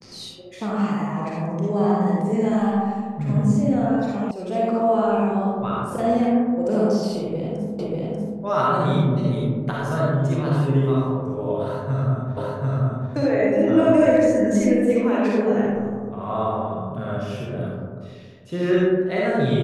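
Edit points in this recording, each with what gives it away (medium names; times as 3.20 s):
4.31 s: sound stops dead
7.79 s: repeat of the last 0.59 s
12.37 s: repeat of the last 0.74 s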